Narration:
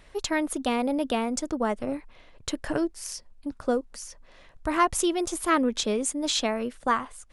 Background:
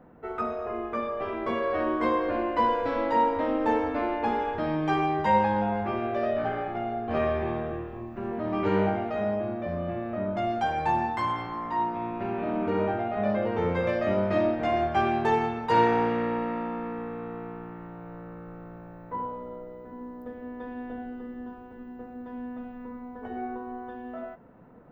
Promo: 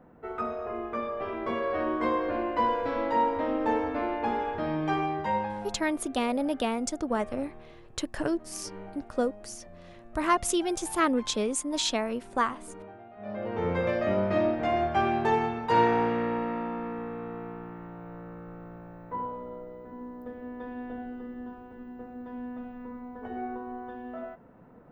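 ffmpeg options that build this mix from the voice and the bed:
ffmpeg -i stem1.wav -i stem2.wav -filter_complex "[0:a]adelay=5500,volume=-2dB[link_01];[1:a]volume=16dB,afade=type=out:start_time=4.88:duration=0.96:silence=0.141254,afade=type=in:start_time=13.18:duration=0.56:silence=0.125893[link_02];[link_01][link_02]amix=inputs=2:normalize=0" out.wav

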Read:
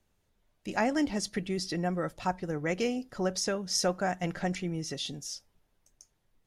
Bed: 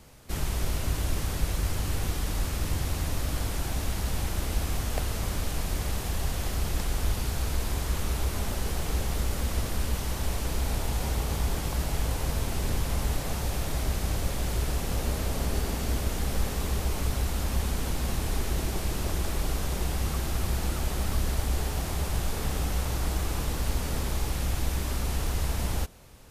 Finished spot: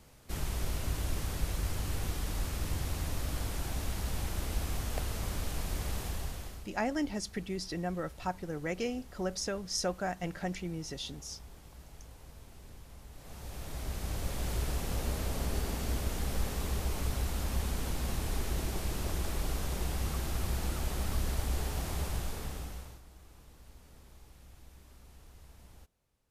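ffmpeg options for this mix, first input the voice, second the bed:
ffmpeg -i stem1.wav -i stem2.wav -filter_complex "[0:a]adelay=6000,volume=-4.5dB[link_01];[1:a]volume=12.5dB,afade=type=out:start_time=6.02:duration=0.67:silence=0.133352,afade=type=in:start_time=13.12:duration=1.38:silence=0.125893,afade=type=out:start_time=22.01:duration=1.01:silence=0.0841395[link_02];[link_01][link_02]amix=inputs=2:normalize=0" out.wav

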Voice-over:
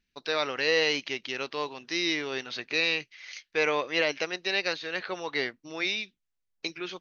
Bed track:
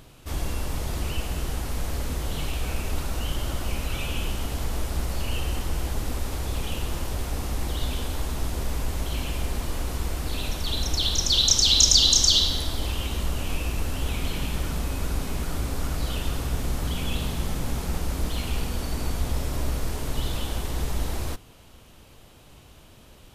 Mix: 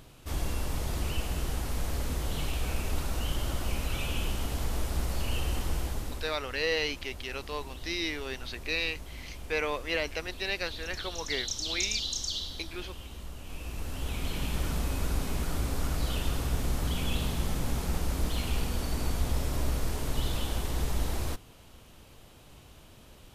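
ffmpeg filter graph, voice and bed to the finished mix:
ffmpeg -i stem1.wav -i stem2.wav -filter_complex "[0:a]adelay=5950,volume=-4.5dB[link_01];[1:a]volume=9.5dB,afade=type=out:start_time=5.72:duration=0.66:silence=0.251189,afade=type=in:start_time=13.43:duration=1.24:silence=0.237137[link_02];[link_01][link_02]amix=inputs=2:normalize=0" out.wav

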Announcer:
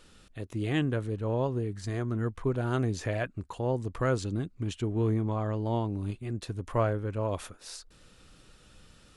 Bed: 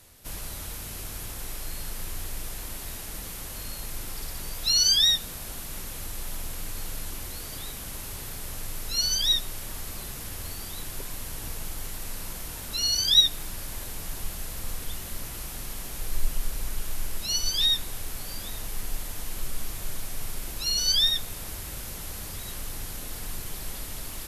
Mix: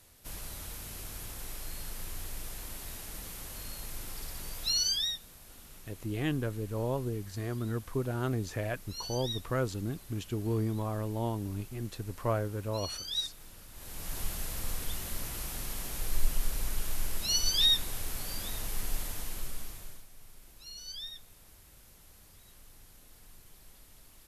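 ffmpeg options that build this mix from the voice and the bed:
ffmpeg -i stem1.wav -i stem2.wav -filter_complex "[0:a]adelay=5500,volume=-3.5dB[link_01];[1:a]volume=8.5dB,afade=type=out:start_time=4.6:duration=0.59:silence=0.316228,afade=type=in:start_time=13.73:duration=0.47:silence=0.199526,afade=type=out:start_time=19.01:duration=1.05:silence=0.11885[link_02];[link_01][link_02]amix=inputs=2:normalize=0" out.wav

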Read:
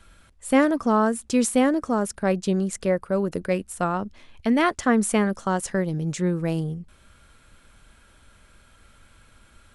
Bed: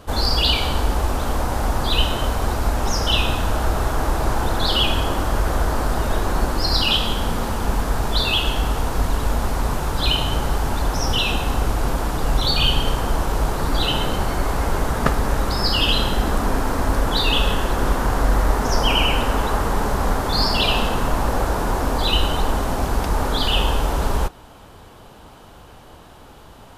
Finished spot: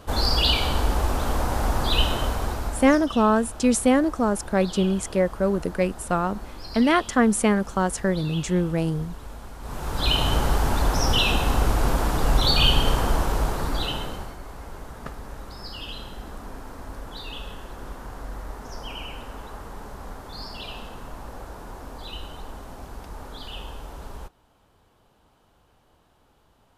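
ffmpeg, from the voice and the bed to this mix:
ffmpeg -i stem1.wav -i stem2.wav -filter_complex "[0:a]adelay=2300,volume=1dB[link_01];[1:a]volume=15.5dB,afade=type=out:start_time=2.11:duration=0.95:silence=0.158489,afade=type=in:start_time=9.6:duration=0.67:silence=0.125893,afade=type=out:start_time=13:duration=1.37:silence=0.133352[link_02];[link_01][link_02]amix=inputs=2:normalize=0" out.wav

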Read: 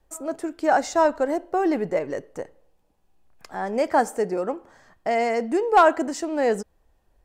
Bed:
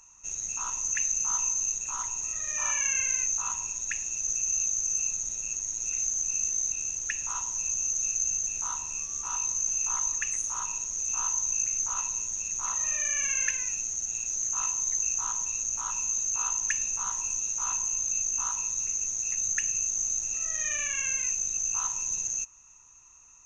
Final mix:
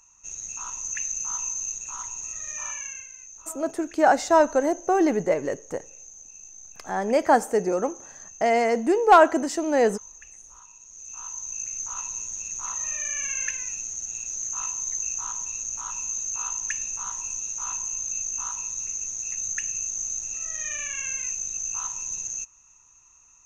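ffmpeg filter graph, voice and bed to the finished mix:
ffmpeg -i stem1.wav -i stem2.wav -filter_complex "[0:a]adelay=3350,volume=1.5dB[link_01];[1:a]volume=13.5dB,afade=type=out:start_time=2.48:duration=0.61:silence=0.188365,afade=type=in:start_time=10.78:duration=1.42:silence=0.16788[link_02];[link_01][link_02]amix=inputs=2:normalize=0" out.wav

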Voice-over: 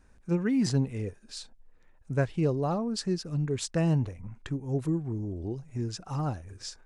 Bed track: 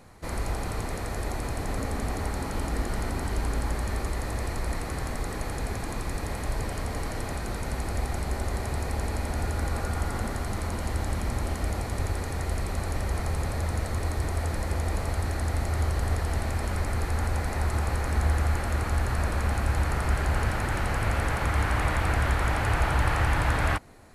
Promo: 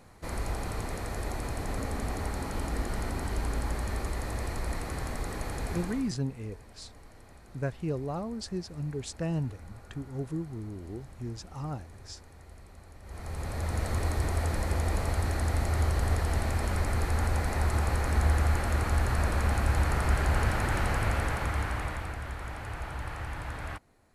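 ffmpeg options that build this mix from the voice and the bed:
ffmpeg -i stem1.wav -i stem2.wav -filter_complex "[0:a]adelay=5450,volume=-5.5dB[link_01];[1:a]volume=17.5dB,afade=type=out:start_time=5.76:duration=0.39:silence=0.125893,afade=type=in:start_time=13.02:duration=0.9:silence=0.0944061,afade=type=out:start_time=20.84:duration=1.33:silence=0.237137[link_02];[link_01][link_02]amix=inputs=2:normalize=0" out.wav

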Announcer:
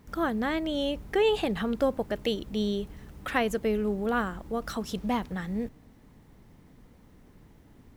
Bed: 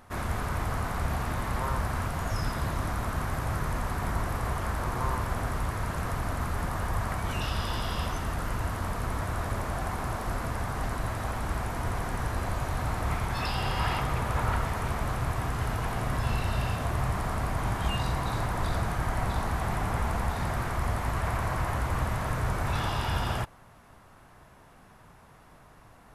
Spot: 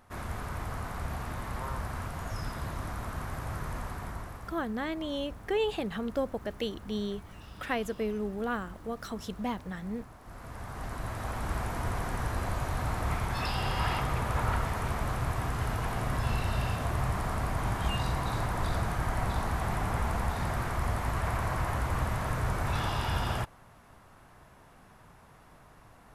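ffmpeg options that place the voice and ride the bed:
ffmpeg -i stem1.wav -i stem2.wav -filter_complex "[0:a]adelay=4350,volume=-5dB[link_01];[1:a]volume=12dB,afade=type=out:start_time=3.8:duration=0.82:silence=0.211349,afade=type=in:start_time=10.21:duration=1.35:silence=0.125893[link_02];[link_01][link_02]amix=inputs=2:normalize=0" out.wav

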